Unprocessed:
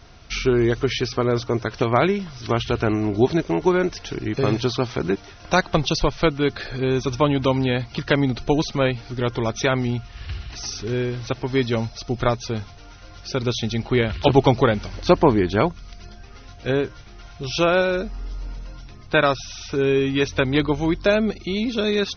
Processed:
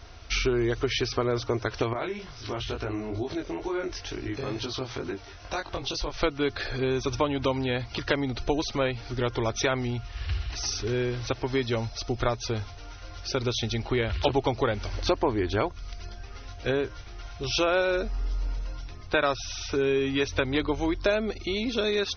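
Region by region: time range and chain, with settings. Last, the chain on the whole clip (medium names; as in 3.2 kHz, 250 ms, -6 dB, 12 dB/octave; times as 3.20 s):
1.93–6.14 s: compression 4:1, threshold -23 dBFS + chorus 2.2 Hz, delay 19.5 ms, depth 4 ms
whole clip: peaking EQ 72 Hz +3.5 dB 2.3 oct; compression 3:1, threshold -21 dBFS; peaking EQ 170 Hz -15 dB 0.69 oct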